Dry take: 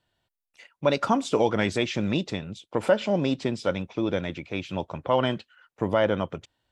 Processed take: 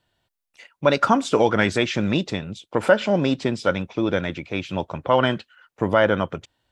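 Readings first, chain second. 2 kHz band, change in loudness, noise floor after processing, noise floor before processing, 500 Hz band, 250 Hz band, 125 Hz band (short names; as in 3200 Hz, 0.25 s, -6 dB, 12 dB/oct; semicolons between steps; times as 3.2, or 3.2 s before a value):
+8.0 dB, +4.5 dB, -82 dBFS, under -85 dBFS, +4.0 dB, +4.0 dB, +4.0 dB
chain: dynamic EQ 1500 Hz, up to +6 dB, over -44 dBFS, Q 2.2; gain +4 dB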